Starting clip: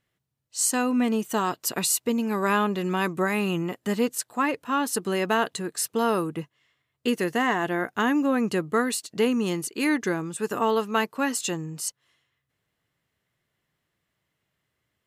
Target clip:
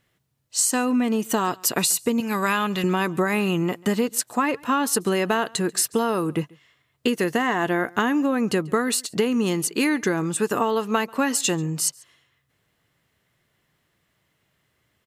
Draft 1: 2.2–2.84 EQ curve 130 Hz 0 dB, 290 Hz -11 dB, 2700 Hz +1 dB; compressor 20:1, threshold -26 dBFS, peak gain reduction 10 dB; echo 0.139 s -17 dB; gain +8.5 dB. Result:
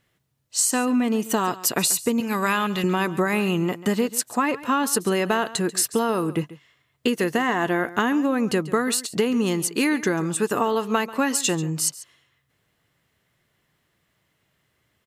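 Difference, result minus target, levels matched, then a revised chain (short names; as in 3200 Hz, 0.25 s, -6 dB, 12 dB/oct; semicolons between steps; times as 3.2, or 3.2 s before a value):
echo-to-direct +8.5 dB
2.2–2.84 EQ curve 130 Hz 0 dB, 290 Hz -11 dB, 2700 Hz +1 dB; compressor 20:1, threshold -26 dBFS, peak gain reduction 10 dB; echo 0.139 s -25.5 dB; gain +8.5 dB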